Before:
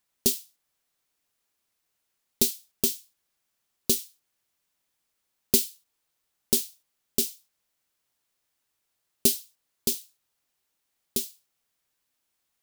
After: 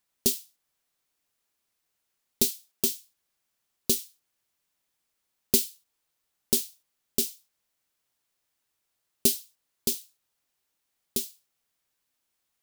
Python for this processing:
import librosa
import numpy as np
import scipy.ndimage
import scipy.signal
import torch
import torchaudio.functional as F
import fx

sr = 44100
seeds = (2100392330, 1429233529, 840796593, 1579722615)

y = fx.highpass(x, sr, hz=200.0, slope=12, at=(2.44, 2.84))
y = y * 10.0 ** (-1.0 / 20.0)